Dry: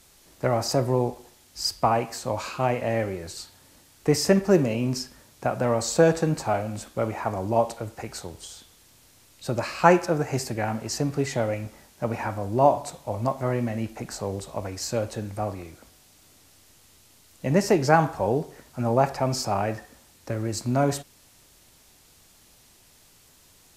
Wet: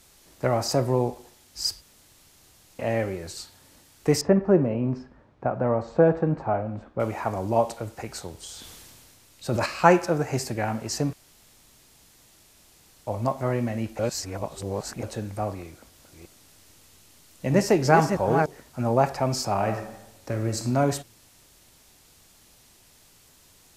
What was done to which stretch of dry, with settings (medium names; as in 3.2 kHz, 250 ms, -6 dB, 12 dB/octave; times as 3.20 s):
1.81–2.79 s: room tone
4.21–7.00 s: low-pass 1.3 kHz
8.41–9.66 s: decay stretcher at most 22 dB/s
11.13–13.07 s: room tone
13.99–15.03 s: reverse
15.62–18.46 s: chunks repeated in reverse 319 ms, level -5.5 dB
19.53–20.66 s: reverb throw, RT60 0.92 s, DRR 6 dB